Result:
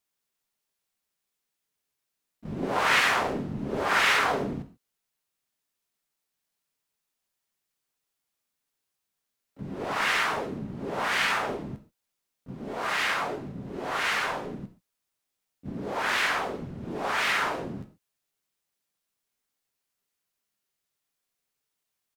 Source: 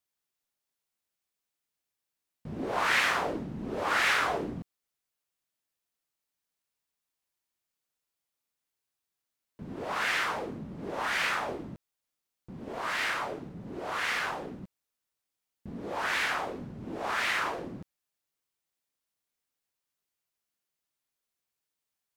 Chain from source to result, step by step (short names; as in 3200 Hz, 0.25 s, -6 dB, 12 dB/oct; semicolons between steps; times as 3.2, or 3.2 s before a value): non-linear reverb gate 0.16 s falling, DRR 6.5 dB; harmoniser -7 st -7 dB, +5 st -8 dB; gain +1.5 dB